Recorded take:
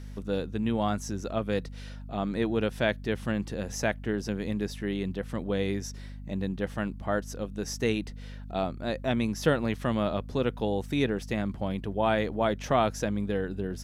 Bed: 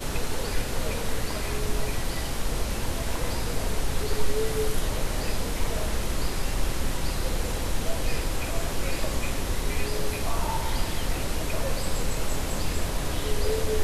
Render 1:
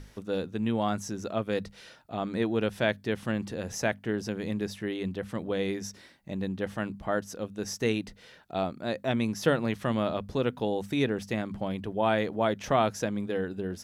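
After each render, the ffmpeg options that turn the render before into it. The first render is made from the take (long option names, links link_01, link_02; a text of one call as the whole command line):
ffmpeg -i in.wav -af "bandreject=frequency=50:width_type=h:width=6,bandreject=frequency=100:width_type=h:width=6,bandreject=frequency=150:width_type=h:width=6,bandreject=frequency=200:width_type=h:width=6,bandreject=frequency=250:width_type=h:width=6" out.wav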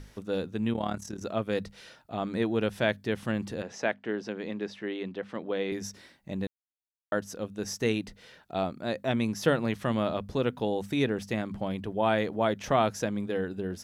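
ffmpeg -i in.wav -filter_complex "[0:a]asettb=1/sr,asplit=3[link_01][link_02][link_03];[link_01]atrim=end=0.734[link_04];[link_02]atrim=start=0.73:end=1.22,asetpts=PTS-STARTPTS,afade=type=in:duration=0.004:curve=qsin,afade=type=out:start_time=0.486:duration=0.004:curve=qsin,tremolo=f=37:d=0.788[link_05];[link_03]atrim=start=1.216[link_06];[link_04][link_05]acrossfade=duration=0.004:curve1=hsin:curve2=qsin[link_07];[link_07][link_06]acrossfade=duration=0.004:curve1=qsin:curve2=hsin,asettb=1/sr,asplit=3[link_08][link_09][link_10];[link_08]atrim=end=3.624[link_11];[link_09]atrim=start=3.62:end=5.72,asetpts=PTS-STARTPTS,afade=type=in:duration=0.004:curve=qsin,afade=type=out:start_time=2.096:duration=0.004:curve=qsin,highpass=250,lowpass=4000[link_12];[link_10]atrim=start=5.716[link_13];[link_11][link_12]acrossfade=duration=0.004:curve1=hsin:curve2=qsin[link_14];[link_14][link_13]acrossfade=duration=0.004:curve1=qsin:curve2=hsin,asplit=3[link_15][link_16][link_17];[link_15]atrim=end=6.47,asetpts=PTS-STARTPTS,afade=type=out:start_time=6.466:duration=0.004:curve=hsin[link_18];[link_16]atrim=start=6.47:end=7.12,asetpts=PTS-STARTPTS,volume=0[link_19];[link_17]atrim=start=7.12,asetpts=PTS-STARTPTS,afade=type=in:duration=0.004:curve=hsin[link_20];[link_18][link_19][link_20]concat=n=3:v=0:a=1" out.wav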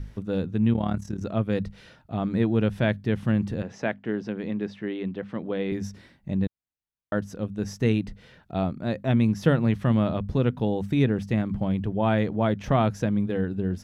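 ffmpeg -i in.wav -af "bass=frequency=250:gain=12,treble=frequency=4000:gain=-7" out.wav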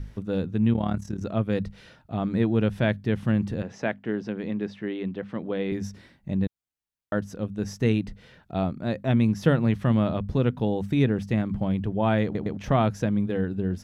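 ffmpeg -i in.wav -filter_complex "[0:a]asplit=4[link_01][link_02][link_03][link_04];[link_01]atrim=end=12.352[link_05];[link_02]atrim=start=12.238:end=12.352[link_06];[link_03]atrim=start=12.238:end=12.352[link_07];[link_04]atrim=start=12.568[link_08];[link_05][link_06]acrossfade=duration=0.004:curve1=hsin:curve2=hsin[link_09];[link_09][link_07]acrossfade=duration=0.004:curve1=hsin:curve2=hsin[link_10];[link_10][link_08]acrossfade=duration=0.004:curve1=hsin:curve2=hsin" out.wav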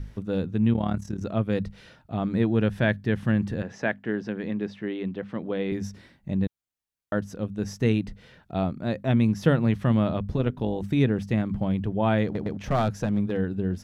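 ffmpeg -i in.wav -filter_complex "[0:a]asettb=1/sr,asplit=3[link_01][link_02][link_03];[link_01]atrim=end=2.554[link_04];[link_02]atrim=start=2.55:end=4.55,asetpts=PTS-STARTPTS,afade=type=in:duration=0.004:curve=qsin,afade=type=out:start_time=1.996:duration=0.004:curve=qsin,equalizer=frequency=1700:width_type=o:width=0.24:gain=6[link_05];[link_03]atrim=start=4.546[link_06];[link_04][link_05]acrossfade=duration=0.004:curve1=hsin:curve2=qsin[link_07];[link_07][link_06]acrossfade=duration=0.004:curve1=qsin:curve2=hsin,asettb=1/sr,asplit=3[link_08][link_09][link_10];[link_08]atrim=end=10.364[link_11];[link_09]atrim=start=10.36:end=10.84,asetpts=PTS-STARTPTS,afade=type=in:duration=0.004:curve=qsin,afade=type=out:start_time=0.476:duration=0.004:curve=qsin,tremolo=f=150:d=0.519[link_12];[link_10]atrim=start=10.836[link_13];[link_11][link_12]acrossfade=duration=0.004:curve1=hsin:curve2=qsin[link_14];[link_14][link_13]acrossfade=duration=0.004:curve1=qsin:curve2=hsin,asettb=1/sr,asplit=3[link_15][link_16][link_17];[link_15]atrim=end=12.284[link_18];[link_16]atrim=start=12.28:end=13.37,asetpts=PTS-STARTPTS,afade=type=in:duration=0.004:curve=qsin,afade=type=out:start_time=1.086:duration=0.004:curve=qsin,aeval=exprs='clip(val(0),-1,0.075)':channel_layout=same[link_19];[link_17]atrim=start=13.366[link_20];[link_18][link_19]acrossfade=duration=0.004:curve1=hsin:curve2=qsin[link_21];[link_21][link_20]acrossfade=duration=0.004:curve1=qsin:curve2=hsin" out.wav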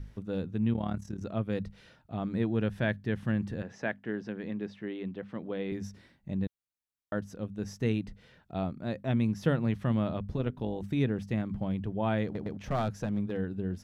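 ffmpeg -i in.wav -af "volume=-6.5dB" out.wav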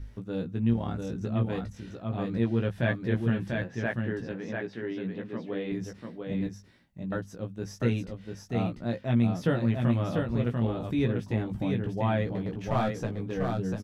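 ffmpeg -i in.wav -filter_complex "[0:a]asplit=2[link_01][link_02];[link_02]adelay=17,volume=-4dB[link_03];[link_01][link_03]amix=inputs=2:normalize=0,aecho=1:1:693:0.631" out.wav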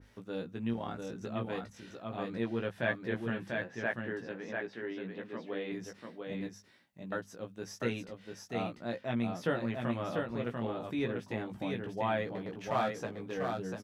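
ffmpeg -i in.wav -af "highpass=frequency=550:poles=1,adynamicequalizer=threshold=0.00282:dfrequency=2500:dqfactor=0.7:tfrequency=2500:tqfactor=0.7:attack=5:release=100:ratio=0.375:range=2:mode=cutabove:tftype=highshelf" out.wav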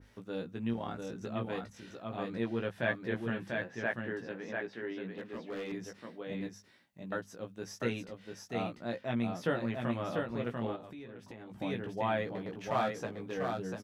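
ffmpeg -i in.wav -filter_complex "[0:a]asettb=1/sr,asplit=3[link_01][link_02][link_03];[link_01]atrim=end=5.124[link_04];[link_02]atrim=start=5.12:end=5.72,asetpts=PTS-STARTPTS,afade=type=in:duration=0.004:curve=qsin,afade=type=out:start_time=0.596:duration=0.004:curve=qsin,asoftclip=type=hard:threshold=-35.5dB[link_05];[link_03]atrim=start=5.716[link_06];[link_04][link_05]acrossfade=duration=0.004:curve1=hsin:curve2=qsin[link_07];[link_07][link_06]acrossfade=duration=0.004:curve1=qsin:curve2=hsin,asplit=3[link_08][link_09][link_10];[link_08]afade=type=out:start_time=10.75:duration=0.02[link_11];[link_09]acompressor=threshold=-44dB:ratio=8:attack=3.2:release=140:knee=1:detection=peak,afade=type=in:start_time=10.75:duration=0.02,afade=type=out:start_time=11.58:duration=0.02[link_12];[link_10]afade=type=in:start_time=11.58:duration=0.02[link_13];[link_11][link_12][link_13]amix=inputs=3:normalize=0" out.wav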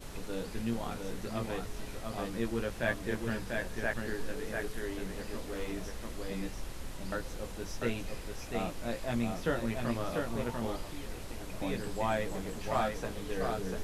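ffmpeg -i in.wav -i bed.wav -filter_complex "[1:a]volume=-15dB[link_01];[0:a][link_01]amix=inputs=2:normalize=0" out.wav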